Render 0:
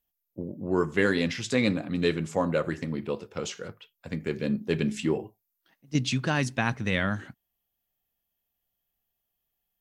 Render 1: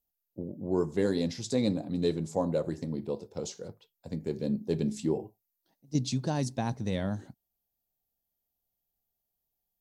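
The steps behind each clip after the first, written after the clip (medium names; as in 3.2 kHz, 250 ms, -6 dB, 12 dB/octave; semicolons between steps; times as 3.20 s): high-order bell 1.9 kHz -14 dB; trim -2.5 dB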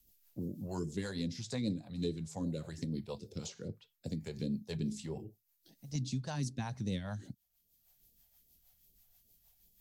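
rotary cabinet horn 6.3 Hz; phase shifter stages 2, 2.5 Hz, lowest notch 280–1100 Hz; three bands compressed up and down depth 70%; trim -1.5 dB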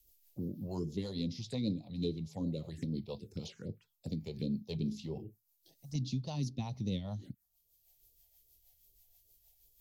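touch-sensitive phaser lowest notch 190 Hz, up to 1.6 kHz, full sweep at -38 dBFS; trim +1 dB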